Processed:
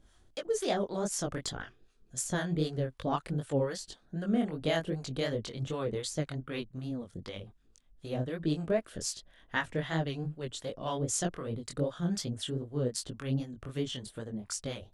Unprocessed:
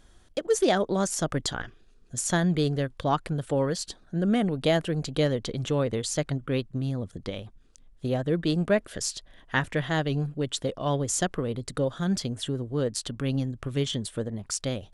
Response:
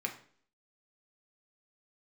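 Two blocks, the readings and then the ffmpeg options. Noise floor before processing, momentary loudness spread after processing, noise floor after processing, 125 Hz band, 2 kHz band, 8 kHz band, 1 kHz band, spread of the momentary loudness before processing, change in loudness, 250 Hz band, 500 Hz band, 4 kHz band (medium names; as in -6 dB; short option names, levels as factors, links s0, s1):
-56 dBFS, 10 LU, -64 dBFS, -6.5 dB, -6.5 dB, -5.5 dB, -7.0 dB, 9 LU, -6.5 dB, -6.5 dB, -6.5 dB, -6.0 dB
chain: -filter_complex "[0:a]acrossover=split=680[s0][s1];[s0]aeval=exprs='val(0)*(1-0.7/2+0.7/2*cos(2*PI*3.9*n/s))':c=same[s2];[s1]aeval=exprs='val(0)*(1-0.7/2-0.7/2*cos(2*PI*3.9*n/s))':c=same[s3];[s2][s3]amix=inputs=2:normalize=0,flanger=delay=18:depth=6.5:speed=2.6"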